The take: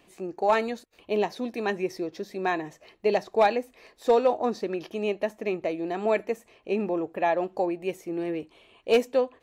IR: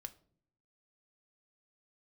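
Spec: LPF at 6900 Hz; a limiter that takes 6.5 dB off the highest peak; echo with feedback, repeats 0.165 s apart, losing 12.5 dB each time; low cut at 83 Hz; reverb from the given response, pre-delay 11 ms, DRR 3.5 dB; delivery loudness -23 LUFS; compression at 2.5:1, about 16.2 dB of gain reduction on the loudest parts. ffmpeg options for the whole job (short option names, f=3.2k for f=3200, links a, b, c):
-filter_complex "[0:a]highpass=83,lowpass=6.9k,acompressor=threshold=-42dB:ratio=2.5,alimiter=level_in=7.5dB:limit=-24dB:level=0:latency=1,volume=-7.5dB,aecho=1:1:165|330|495:0.237|0.0569|0.0137,asplit=2[a][b];[1:a]atrim=start_sample=2205,adelay=11[c];[b][c]afir=irnorm=-1:irlink=0,volume=1.5dB[d];[a][d]amix=inputs=2:normalize=0,volume=18dB"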